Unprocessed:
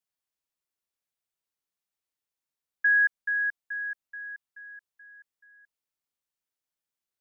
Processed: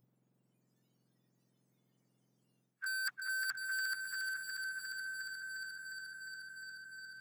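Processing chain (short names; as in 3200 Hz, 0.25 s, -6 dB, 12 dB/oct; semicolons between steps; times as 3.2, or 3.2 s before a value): spectrum mirrored in octaves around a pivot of 1600 Hz; tilt +2 dB/oct; notches 50/100/150 Hz; reverse; compressor 12:1, threshold -35 dBFS, peak gain reduction 16 dB; reverse; hard clip -36 dBFS, distortion -15 dB; on a send: thin delay 0.355 s, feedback 76%, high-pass 1500 Hz, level -6 dB; on the sum: spectral noise reduction 15 dB; spectral compressor 2:1; gain +7.5 dB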